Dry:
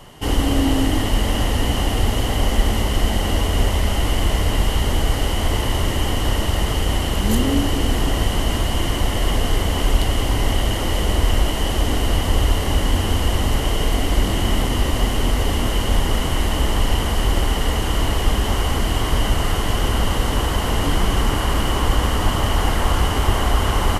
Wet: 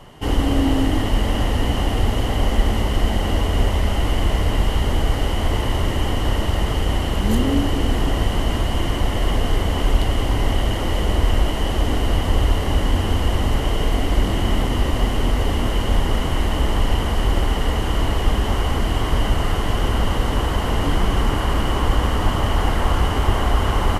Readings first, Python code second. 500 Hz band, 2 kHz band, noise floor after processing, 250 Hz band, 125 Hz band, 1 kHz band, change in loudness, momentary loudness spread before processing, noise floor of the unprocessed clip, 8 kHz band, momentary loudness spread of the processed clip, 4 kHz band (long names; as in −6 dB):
0.0 dB, −1.5 dB, −22 dBFS, 0.0 dB, 0.0 dB, −0.5 dB, −0.5 dB, 2 LU, −22 dBFS, −6.5 dB, 2 LU, −3.5 dB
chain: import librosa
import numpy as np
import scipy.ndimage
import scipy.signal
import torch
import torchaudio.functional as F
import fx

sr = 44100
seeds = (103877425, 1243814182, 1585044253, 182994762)

y = fx.high_shelf(x, sr, hz=3700.0, db=-8.0)